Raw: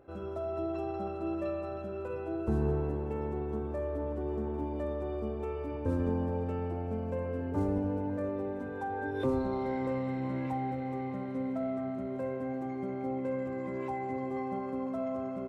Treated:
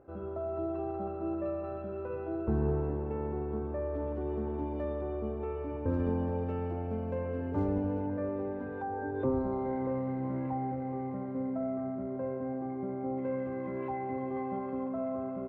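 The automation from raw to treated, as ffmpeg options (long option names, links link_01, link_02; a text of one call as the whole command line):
ffmpeg -i in.wav -af "asetnsamples=nb_out_samples=441:pad=0,asendcmd='1.64 lowpass f 2000;3.94 lowpass f 3400;5.01 lowpass f 2200;5.94 lowpass f 3600;8.06 lowpass f 2300;8.82 lowpass f 1300;13.18 lowpass f 2200;14.88 lowpass f 1600',lowpass=1500" out.wav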